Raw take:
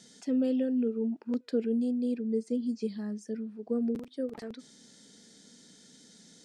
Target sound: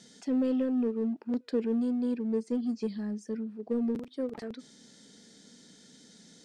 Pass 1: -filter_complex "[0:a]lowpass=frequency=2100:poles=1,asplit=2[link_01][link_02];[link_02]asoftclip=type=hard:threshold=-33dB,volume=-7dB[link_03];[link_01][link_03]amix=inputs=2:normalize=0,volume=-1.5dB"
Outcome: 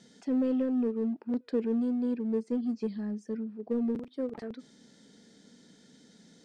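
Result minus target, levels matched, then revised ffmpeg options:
8,000 Hz band −7.0 dB
-filter_complex "[0:a]lowpass=frequency=6500:poles=1,asplit=2[link_01][link_02];[link_02]asoftclip=type=hard:threshold=-33dB,volume=-7dB[link_03];[link_01][link_03]amix=inputs=2:normalize=0,volume=-1.5dB"

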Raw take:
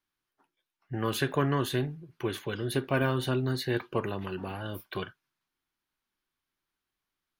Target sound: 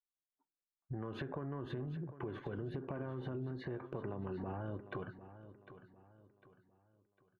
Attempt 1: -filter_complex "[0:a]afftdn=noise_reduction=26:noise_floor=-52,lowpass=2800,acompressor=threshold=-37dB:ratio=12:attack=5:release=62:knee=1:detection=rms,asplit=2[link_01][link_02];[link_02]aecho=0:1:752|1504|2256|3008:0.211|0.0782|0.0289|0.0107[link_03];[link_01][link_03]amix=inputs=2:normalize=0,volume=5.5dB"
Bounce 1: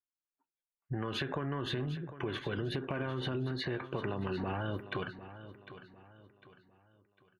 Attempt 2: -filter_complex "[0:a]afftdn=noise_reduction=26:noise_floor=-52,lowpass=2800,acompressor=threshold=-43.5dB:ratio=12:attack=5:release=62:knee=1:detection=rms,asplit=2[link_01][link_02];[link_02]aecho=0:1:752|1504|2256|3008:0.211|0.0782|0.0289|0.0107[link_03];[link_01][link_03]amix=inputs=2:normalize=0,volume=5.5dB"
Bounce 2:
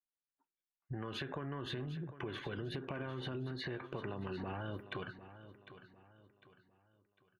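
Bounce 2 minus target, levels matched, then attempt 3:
2,000 Hz band +5.5 dB
-filter_complex "[0:a]afftdn=noise_reduction=26:noise_floor=-52,lowpass=1000,acompressor=threshold=-43.5dB:ratio=12:attack=5:release=62:knee=1:detection=rms,asplit=2[link_01][link_02];[link_02]aecho=0:1:752|1504|2256|3008:0.211|0.0782|0.0289|0.0107[link_03];[link_01][link_03]amix=inputs=2:normalize=0,volume=5.5dB"

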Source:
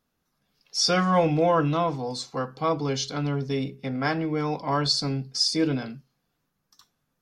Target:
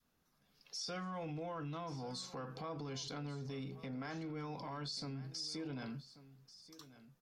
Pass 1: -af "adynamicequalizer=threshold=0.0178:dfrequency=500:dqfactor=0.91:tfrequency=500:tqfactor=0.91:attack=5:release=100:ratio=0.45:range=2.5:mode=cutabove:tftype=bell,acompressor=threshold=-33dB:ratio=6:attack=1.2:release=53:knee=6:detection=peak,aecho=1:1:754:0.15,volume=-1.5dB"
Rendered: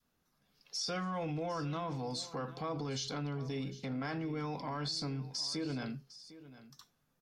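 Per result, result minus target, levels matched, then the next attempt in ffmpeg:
echo 383 ms early; downward compressor: peak gain reduction −6 dB
-af "adynamicequalizer=threshold=0.0178:dfrequency=500:dqfactor=0.91:tfrequency=500:tqfactor=0.91:attack=5:release=100:ratio=0.45:range=2.5:mode=cutabove:tftype=bell,acompressor=threshold=-33dB:ratio=6:attack=1.2:release=53:knee=6:detection=peak,aecho=1:1:1137:0.15,volume=-1.5dB"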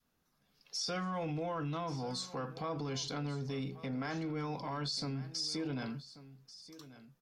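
downward compressor: peak gain reduction −6 dB
-af "adynamicequalizer=threshold=0.0178:dfrequency=500:dqfactor=0.91:tfrequency=500:tqfactor=0.91:attack=5:release=100:ratio=0.45:range=2.5:mode=cutabove:tftype=bell,acompressor=threshold=-40dB:ratio=6:attack=1.2:release=53:knee=6:detection=peak,aecho=1:1:1137:0.15,volume=-1.5dB"

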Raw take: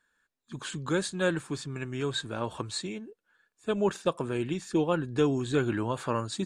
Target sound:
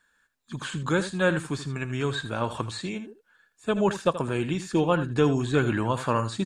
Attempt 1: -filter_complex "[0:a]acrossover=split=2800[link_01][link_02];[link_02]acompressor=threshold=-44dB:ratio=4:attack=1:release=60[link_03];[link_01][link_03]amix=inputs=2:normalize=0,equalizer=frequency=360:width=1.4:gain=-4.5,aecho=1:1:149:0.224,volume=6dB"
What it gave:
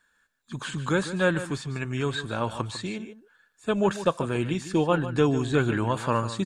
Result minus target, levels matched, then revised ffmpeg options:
echo 69 ms late
-filter_complex "[0:a]acrossover=split=2800[link_01][link_02];[link_02]acompressor=threshold=-44dB:ratio=4:attack=1:release=60[link_03];[link_01][link_03]amix=inputs=2:normalize=0,equalizer=frequency=360:width=1.4:gain=-4.5,aecho=1:1:80:0.224,volume=6dB"

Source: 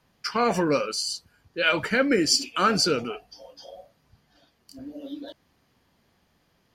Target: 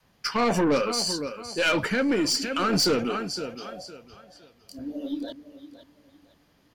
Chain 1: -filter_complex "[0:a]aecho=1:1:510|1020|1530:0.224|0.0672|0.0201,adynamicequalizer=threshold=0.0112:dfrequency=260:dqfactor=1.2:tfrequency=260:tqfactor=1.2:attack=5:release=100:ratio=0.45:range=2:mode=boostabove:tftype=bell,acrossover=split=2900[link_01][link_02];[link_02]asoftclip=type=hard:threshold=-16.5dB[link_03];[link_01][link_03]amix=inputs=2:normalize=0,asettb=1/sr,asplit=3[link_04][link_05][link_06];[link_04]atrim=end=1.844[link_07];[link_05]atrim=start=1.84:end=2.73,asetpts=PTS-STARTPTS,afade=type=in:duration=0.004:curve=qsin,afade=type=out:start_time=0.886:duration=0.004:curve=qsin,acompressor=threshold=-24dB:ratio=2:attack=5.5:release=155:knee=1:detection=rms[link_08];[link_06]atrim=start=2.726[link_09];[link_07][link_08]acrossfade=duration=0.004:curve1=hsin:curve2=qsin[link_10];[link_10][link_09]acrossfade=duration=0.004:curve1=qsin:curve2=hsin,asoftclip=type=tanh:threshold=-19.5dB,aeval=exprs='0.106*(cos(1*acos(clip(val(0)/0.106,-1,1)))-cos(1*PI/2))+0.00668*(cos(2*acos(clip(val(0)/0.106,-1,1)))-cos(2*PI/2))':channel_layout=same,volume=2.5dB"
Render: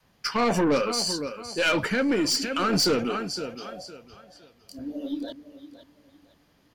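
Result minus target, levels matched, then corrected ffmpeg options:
hard clipping: distortion +27 dB
-filter_complex "[0:a]aecho=1:1:510|1020|1530:0.224|0.0672|0.0201,adynamicequalizer=threshold=0.0112:dfrequency=260:dqfactor=1.2:tfrequency=260:tqfactor=1.2:attack=5:release=100:ratio=0.45:range=2:mode=boostabove:tftype=bell,acrossover=split=2900[link_01][link_02];[link_02]asoftclip=type=hard:threshold=-8.5dB[link_03];[link_01][link_03]amix=inputs=2:normalize=0,asettb=1/sr,asplit=3[link_04][link_05][link_06];[link_04]atrim=end=1.844[link_07];[link_05]atrim=start=1.84:end=2.73,asetpts=PTS-STARTPTS,afade=type=in:duration=0.004:curve=qsin,afade=type=out:start_time=0.886:duration=0.004:curve=qsin,acompressor=threshold=-24dB:ratio=2:attack=5.5:release=155:knee=1:detection=rms[link_08];[link_06]atrim=start=2.726[link_09];[link_07][link_08]acrossfade=duration=0.004:curve1=hsin:curve2=qsin[link_10];[link_10][link_09]acrossfade=duration=0.004:curve1=qsin:curve2=hsin,asoftclip=type=tanh:threshold=-19.5dB,aeval=exprs='0.106*(cos(1*acos(clip(val(0)/0.106,-1,1)))-cos(1*PI/2))+0.00668*(cos(2*acos(clip(val(0)/0.106,-1,1)))-cos(2*PI/2))':channel_layout=same,volume=2.5dB"

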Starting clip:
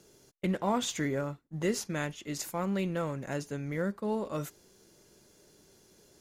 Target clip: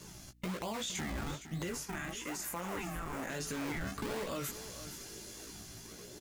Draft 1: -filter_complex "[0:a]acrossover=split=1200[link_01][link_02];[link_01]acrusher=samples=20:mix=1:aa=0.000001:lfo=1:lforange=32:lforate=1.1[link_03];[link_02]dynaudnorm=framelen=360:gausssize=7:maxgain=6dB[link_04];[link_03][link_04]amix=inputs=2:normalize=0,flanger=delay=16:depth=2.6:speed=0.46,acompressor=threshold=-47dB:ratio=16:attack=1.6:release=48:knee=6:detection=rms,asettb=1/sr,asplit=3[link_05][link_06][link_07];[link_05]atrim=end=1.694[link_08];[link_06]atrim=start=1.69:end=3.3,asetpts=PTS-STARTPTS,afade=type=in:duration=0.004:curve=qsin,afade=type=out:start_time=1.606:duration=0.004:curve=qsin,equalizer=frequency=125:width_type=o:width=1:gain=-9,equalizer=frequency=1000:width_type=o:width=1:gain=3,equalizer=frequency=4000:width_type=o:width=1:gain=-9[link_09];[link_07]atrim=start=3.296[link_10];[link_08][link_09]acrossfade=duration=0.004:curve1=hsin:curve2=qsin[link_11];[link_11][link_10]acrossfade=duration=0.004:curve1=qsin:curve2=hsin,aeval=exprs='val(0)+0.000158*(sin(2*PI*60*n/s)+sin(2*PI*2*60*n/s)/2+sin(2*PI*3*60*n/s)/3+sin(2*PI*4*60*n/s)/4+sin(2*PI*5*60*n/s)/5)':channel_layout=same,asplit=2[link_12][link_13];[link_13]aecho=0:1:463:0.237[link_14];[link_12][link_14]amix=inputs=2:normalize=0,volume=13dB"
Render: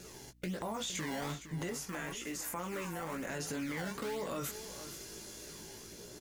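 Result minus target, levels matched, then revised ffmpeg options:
sample-and-hold swept by an LFO: distortion −8 dB
-filter_complex "[0:a]acrossover=split=1200[link_01][link_02];[link_01]acrusher=samples=53:mix=1:aa=0.000001:lfo=1:lforange=84.8:lforate=1.1[link_03];[link_02]dynaudnorm=framelen=360:gausssize=7:maxgain=6dB[link_04];[link_03][link_04]amix=inputs=2:normalize=0,flanger=delay=16:depth=2.6:speed=0.46,acompressor=threshold=-47dB:ratio=16:attack=1.6:release=48:knee=6:detection=rms,asettb=1/sr,asplit=3[link_05][link_06][link_07];[link_05]atrim=end=1.694[link_08];[link_06]atrim=start=1.69:end=3.3,asetpts=PTS-STARTPTS,afade=type=in:duration=0.004:curve=qsin,afade=type=out:start_time=1.606:duration=0.004:curve=qsin,equalizer=frequency=125:width_type=o:width=1:gain=-9,equalizer=frequency=1000:width_type=o:width=1:gain=3,equalizer=frequency=4000:width_type=o:width=1:gain=-9[link_09];[link_07]atrim=start=3.296[link_10];[link_08][link_09]acrossfade=duration=0.004:curve1=hsin:curve2=qsin[link_11];[link_11][link_10]acrossfade=duration=0.004:curve1=qsin:curve2=hsin,aeval=exprs='val(0)+0.000158*(sin(2*PI*60*n/s)+sin(2*PI*2*60*n/s)/2+sin(2*PI*3*60*n/s)/3+sin(2*PI*4*60*n/s)/4+sin(2*PI*5*60*n/s)/5)':channel_layout=same,asplit=2[link_12][link_13];[link_13]aecho=0:1:463:0.237[link_14];[link_12][link_14]amix=inputs=2:normalize=0,volume=13dB"

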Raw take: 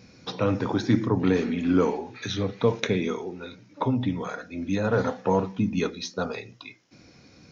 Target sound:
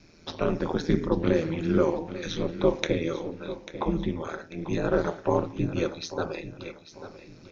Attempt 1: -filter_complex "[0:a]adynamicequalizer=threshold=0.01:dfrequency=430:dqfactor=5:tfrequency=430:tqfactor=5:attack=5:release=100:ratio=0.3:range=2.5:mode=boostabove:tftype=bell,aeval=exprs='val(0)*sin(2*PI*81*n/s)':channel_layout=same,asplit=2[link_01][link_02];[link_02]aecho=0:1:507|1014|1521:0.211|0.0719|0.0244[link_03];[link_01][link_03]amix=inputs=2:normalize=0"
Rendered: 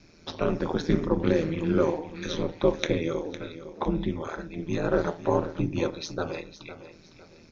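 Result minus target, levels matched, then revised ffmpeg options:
echo 336 ms early
-filter_complex "[0:a]adynamicequalizer=threshold=0.01:dfrequency=430:dqfactor=5:tfrequency=430:tqfactor=5:attack=5:release=100:ratio=0.3:range=2.5:mode=boostabove:tftype=bell,aeval=exprs='val(0)*sin(2*PI*81*n/s)':channel_layout=same,asplit=2[link_01][link_02];[link_02]aecho=0:1:843|1686|2529:0.211|0.0719|0.0244[link_03];[link_01][link_03]amix=inputs=2:normalize=0"

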